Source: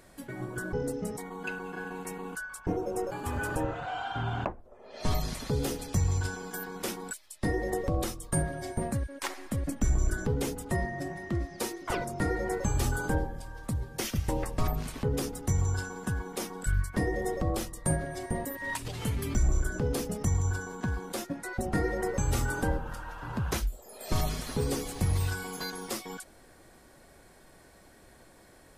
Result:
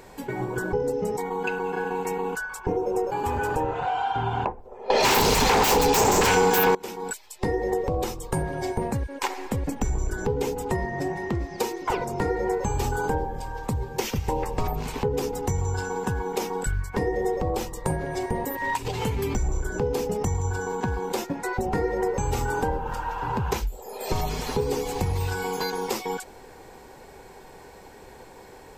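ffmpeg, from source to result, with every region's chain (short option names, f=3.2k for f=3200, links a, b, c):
-filter_complex "[0:a]asettb=1/sr,asplit=3[a][b][c];[a]atrim=end=4.904[d];[b]atrim=start=4.9:end=6.75,asetpts=PTS-STARTPTS,afade=t=in:d=0.004:c=qsin,afade=t=out:st=1.846:d=0.004:c=qsin,acontrast=89,aeval=exprs='0.316*sin(PI/2*8.91*val(0)/0.316)':c=same[e];[c]atrim=start=6.746[f];[d][e]acrossfade=d=0.004:c1=hsin:c2=qsin[g];[g][f]acrossfade=d=0.004:c1=qsin:c2=hsin,superequalizer=7b=2.51:9b=2.82:12b=1.41:16b=0.398,acompressor=threshold=-31dB:ratio=3,volume=7dB"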